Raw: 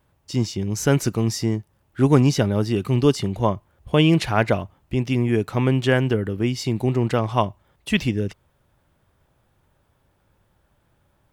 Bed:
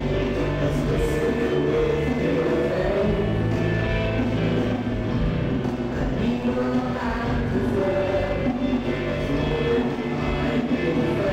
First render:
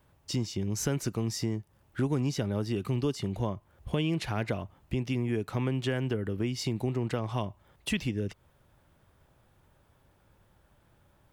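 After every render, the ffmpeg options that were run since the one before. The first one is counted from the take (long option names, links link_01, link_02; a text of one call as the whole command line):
ffmpeg -i in.wav -filter_complex "[0:a]acrossover=split=440|2400[link_01][link_02][link_03];[link_02]alimiter=limit=-17dB:level=0:latency=1[link_04];[link_01][link_04][link_03]amix=inputs=3:normalize=0,acompressor=threshold=-30dB:ratio=3" out.wav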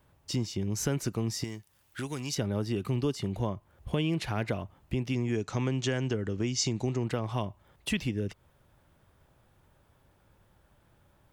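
ffmpeg -i in.wav -filter_complex "[0:a]asettb=1/sr,asplit=3[link_01][link_02][link_03];[link_01]atrim=end=1.444[link_04];[link_02]atrim=start=1.44:end=2.35,asetpts=PTS-STARTPTS,afade=type=in:duration=0.004:curve=qsin,afade=type=out:start_time=0.906:duration=0.004:curve=qsin,tiltshelf=frequency=1400:gain=-9[link_05];[link_03]atrim=start=2.346[link_06];[link_04][link_05]acrossfade=duration=0.004:curve1=hsin:curve2=qsin[link_07];[link_07][link_06]acrossfade=duration=0.004:curve1=qsin:curve2=hsin,asettb=1/sr,asplit=3[link_08][link_09][link_10];[link_08]atrim=end=5.134[link_11];[link_09]atrim=start=5.13:end=7.04,asetpts=PTS-STARTPTS,afade=type=in:duration=0.004:curve=qsin,afade=type=out:start_time=1.906:duration=0.004:curve=qsin,lowpass=frequency=6500:width_type=q:width=4.6[link_12];[link_10]atrim=start=7.036[link_13];[link_11][link_12]acrossfade=duration=0.004:curve1=hsin:curve2=qsin[link_14];[link_14][link_13]acrossfade=duration=0.004:curve1=qsin:curve2=hsin" out.wav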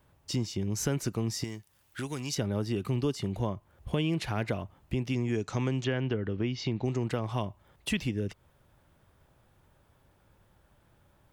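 ffmpeg -i in.wav -filter_complex "[0:a]asplit=3[link_01][link_02][link_03];[link_01]afade=type=out:start_time=5.83:duration=0.02[link_04];[link_02]lowpass=frequency=3800:width=0.5412,lowpass=frequency=3800:width=1.3066,afade=type=in:start_time=5.83:duration=0.02,afade=type=out:start_time=6.84:duration=0.02[link_05];[link_03]afade=type=in:start_time=6.84:duration=0.02[link_06];[link_04][link_05][link_06]amix=inputs=3:normalize=0" out.wav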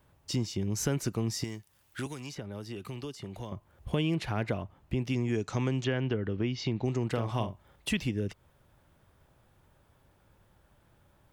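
ffmpeg -i in.wav -filter_complex "[0:a]asettb=1/sr,asplit=3[link_01][link_02][link_03];[link_01]atrim=end=2.064[link_04];[link_02]atrim=start=2.06:end=3.52,asetpts=PTS-STARTPTS,afade=type=in:duration=0.004:curve=qsin,afade=type=out:start_time=1.456:duration=0.004:curve=qsin,acrossover=split=470|2200[link_05][link_06][link_07];[link_05]acompressor=threshold=-41dB:ratio=4[link_08];[link_06]acompressor=threshold=-46dB:ratio=4[link_09];[link_07]acompressor=threshold=-49dB:ratio=4[link_10];[link_08][link_09][link_10]amix=inputs=3:normalize=0[link_11];[link_03]atrim=start=3.516[link_12];[link_04][link_11]acrossfade=duration=0.004:curve1=hsin:curve2=qsin[link_13];[link_13][link_12]acrossfade=duration=0.004:curve1=qsin:curve2=hsin,asettb=1/sr,asplit=3[link_14][link_15][link_16];[link_14]atrim=end=4.154[link_17];[link_15]atrim=start=4.15:end=5,asetpts=PTS-STARTPTS,afade=type=in:duration=0.004:curve=qsin,afade=type=out:start_time=0.846:duration=0.004:curve=qsin,highshelf=frequency=4100:gain=-5.5[link_18];[link_16]atrim=start=4.996[link_19];[link_17][link_18]acrossfade=duration=0.004:curve1=hsin:curve2=qsin[link_20];[link_20][link_19]acrossfade=duration=0.004:curve1=qsin:curve2=hsin,asettb=1/sr,asplit=3[link_21][link_22][link_23];[link_21]atrim=end=7.114[link_24];[link_22]atrim=start=7.11:end=7.88,asetpts=PTS-STARTPTS,afade=type=in:duration=0.004:curve=qsin,afade=type=out:start_time=0.766:duration=0.004:curve=qsin,asplit=2[link_25][link_26];[link_26]adelay=43,volume=-8dB[link_27];[link_25][link_27]amix=inputs=2:normalize=0,atrim=end_sample=33957[link_28];[link_23]atrim=start=7.876[link_29];[link_24][link_28]acrossfade=duration=0.004:curve1=hsin:curve2=qsin[link_30];[link_30][link_29]acrossfade=duration=0.004:curve1=qsin:curve2=hsin" out.wav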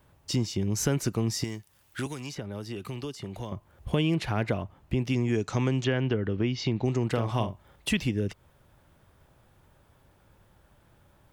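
ffmpeg -i in.wav -af "volume=3.5dB" out.wav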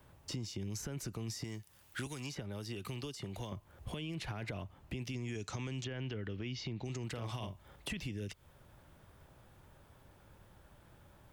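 ffmpeg -i in.wav -filter_complex "[0:a]alimiter=limit=-22dB:level=0:latency=1:release=14,acrossover=split=92|2100[link_01][link_02][link_03];[link_01]acompressor=threshold=-49dB:ratio=4[link_04];[link_02]acompressor=threshold=-42dB:ratio=4[link_05];[link_03]acompressor=threshold=-46dB:ratio=4[link_06];[link_04][link_05][link_06]amix=inputs=3:normalize=0" out.wav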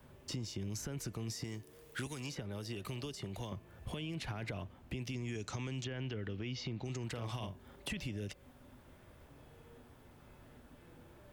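ffmpeg -i in.wav -i bed.wav -filter_complex "[1:a]volume=-39dB[link_01];[0:a][link_01]amix=inputs=2:normalize=0" out.wav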